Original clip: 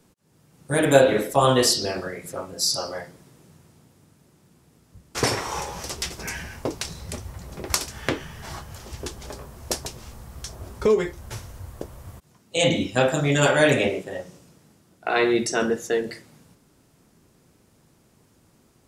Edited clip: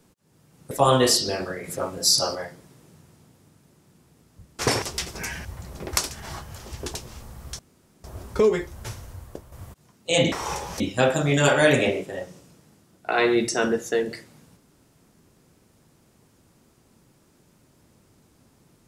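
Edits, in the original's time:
0:00.71–0:01.27: remove
0:02.20–0:02.91: clip gain +4 dB
0:05.38–0:05.86: move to 0:12.78
0:06.49–0:07.22: remove
0:07.97–0:08.40: remove
0:09.14–0:09.85: remove
0:10.50: splice in room tone 0.45 s
0:11.48–0:11.98: fade out, to −7.5 dB

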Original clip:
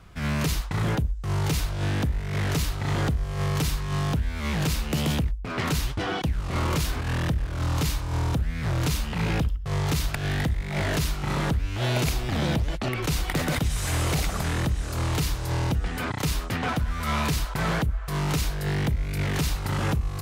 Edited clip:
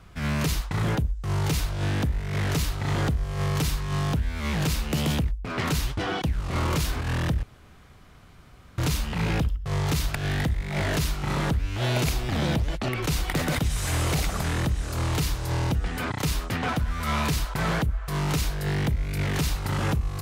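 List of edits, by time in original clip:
0:07.43–0:08.78: fill with room tone

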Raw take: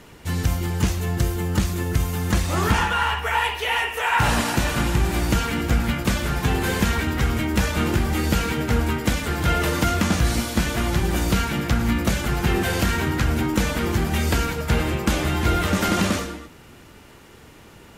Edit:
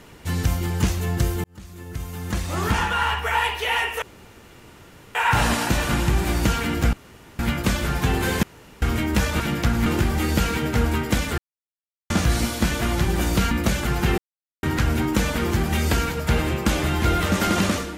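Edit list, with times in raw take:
0:01.44–0:03.11: fade in linear
0:04.02: splice in room tone 1.13 s
0:05.80: splice in room tone 0.46 s
0:06.84–0:07.23: fill with room tone
0:09.33–0:10.05: silence
0:11.46–0:11.92: move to 0:07.81
0:12.59–0:13.04: silence

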